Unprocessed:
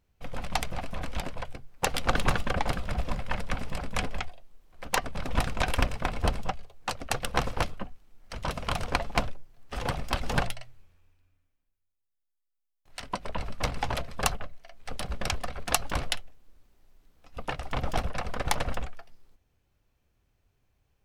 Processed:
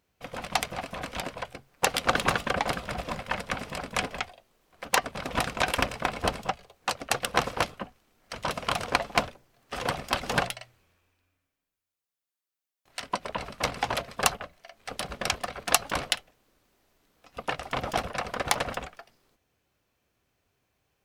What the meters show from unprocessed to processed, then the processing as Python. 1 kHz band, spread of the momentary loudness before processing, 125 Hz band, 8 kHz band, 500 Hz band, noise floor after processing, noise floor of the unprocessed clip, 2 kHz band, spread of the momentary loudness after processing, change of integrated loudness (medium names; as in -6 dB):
+3.0 dB, 13 LU, -5.0 dB, +4.0 dB, +3.0 dB, under -85 dBFS, -79 dBFS, +4.0 dB, 14 LU, +2.5 dB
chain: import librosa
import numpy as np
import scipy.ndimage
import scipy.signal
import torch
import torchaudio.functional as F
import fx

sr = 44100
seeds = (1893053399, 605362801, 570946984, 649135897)

y = fx.highpass(x, sr, hz=280.0, slope=6)
y = fx.notch(y, sr, hz=860.0, q=24.0)
y = y * librosa.db_to_amplitude(4.0)